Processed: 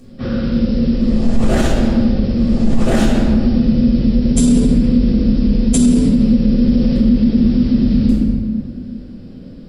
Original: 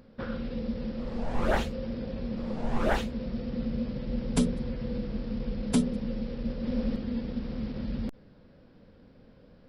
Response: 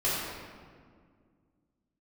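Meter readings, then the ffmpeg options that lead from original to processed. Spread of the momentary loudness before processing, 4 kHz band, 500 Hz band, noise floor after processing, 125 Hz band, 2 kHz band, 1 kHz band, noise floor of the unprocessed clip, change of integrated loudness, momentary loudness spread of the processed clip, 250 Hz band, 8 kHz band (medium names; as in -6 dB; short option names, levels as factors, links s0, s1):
7 LU, +13.0 dB, +11.5 dB, -34 dBFS, +18.0 dB, +8.5 dB, +7.5 dB, -56 dBFS, +18.0 dB, 6 LU, +19.5 dB, +18.0 dB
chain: -filter_complex "[0:a]equalizer=f=250:t=o:w=1:g=6,equalizer=f=500:t=o:w=1:g=-5,equalizer=f=1000:t=o:w=1:g=-8,equalizer=f=2000:t=o:w=1:g=-4,equalizer=f=8000:t=o:w=1:g=11[s0];[1:a]atrim=start_sample=2205[s1];[s0][s1]afir=irnorm=-1:irlink=0,alimiter=level_in=2.66:limit=0.891:release=50:level=0:latency=1,volume=0.708"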